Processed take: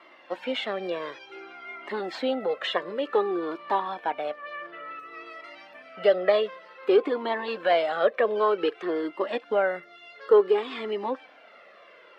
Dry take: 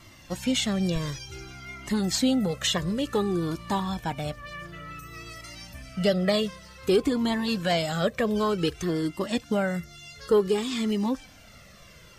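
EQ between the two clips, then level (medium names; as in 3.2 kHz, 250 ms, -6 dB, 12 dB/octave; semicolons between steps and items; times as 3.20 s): high-pass 400 Hz 24 dB/octave; distance through air 460 m; treble shelf 5.8 kHz -5.5 dB; +6.5 dB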